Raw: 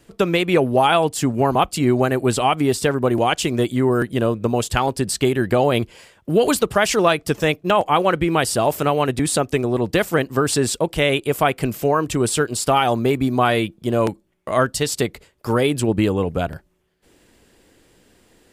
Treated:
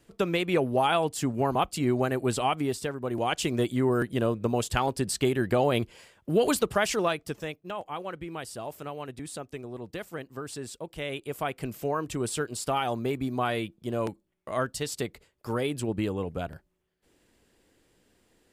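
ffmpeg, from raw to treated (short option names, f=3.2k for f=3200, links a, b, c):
-af "volume=8dB,afade=t=out:st=2.49:d=0.5:silence=0.446684,afade=t=in:st=2.99:d=0.46:silence=0.375837,afade=t=out:st=6.68:d=0.87:silence=0.251189,afade=t=in:st=10.77:d=1.15:silence=0.398107"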